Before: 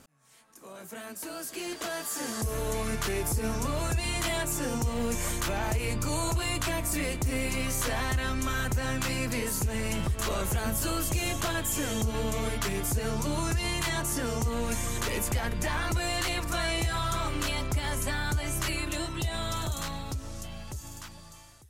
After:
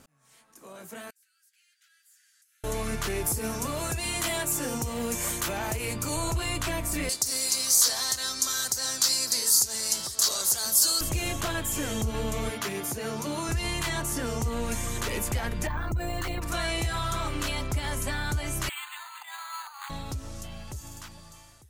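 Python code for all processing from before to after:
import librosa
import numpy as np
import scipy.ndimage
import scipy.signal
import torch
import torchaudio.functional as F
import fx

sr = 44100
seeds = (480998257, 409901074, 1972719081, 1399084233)

y = fx.chain(x, sr, fx.steep_highpass(hz=1400.0, slope=96),
    fx.gate_flip(shuts_db=-38.0, range_db=-26), at=(1.1, 2.64))
y = fx.chain(y, sr, fx.highpass(hz=120.0, slope=6),
    fx.high_shelf(hz=8100.0, db=8.0), at=(3.26, 6.16))
y = fx.chain(y, sr, fx.highpass(hz=1100.0, slope=6),
    fx.high_shelf_res(hz=3500.0, db=10.5, q=3.0), at=(7.09, 11.01))
y = fx.chain(y, sr, fx.highpass(hz=180.0, slope=12),
    fx.notch(hz=7900.0, q=9.3), at=(12.5, 13.49))
y = fx.chain(y, sr, fx.envelope_sharpen(power=1.5),
    fx.peak_eq(hz=3500.0, db=-5.5, octaves=2.2),
    fx.resample_bad(factor=2, down='none', up='hold'), at=(15.67, 16.42))
y = fx.chain(y, sr, fx.steep_highpass(hz=790.0, slope=96),
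    fx.resample_bad(factor=8, down='filtered', up='hold'), at=(18.69, 19.9))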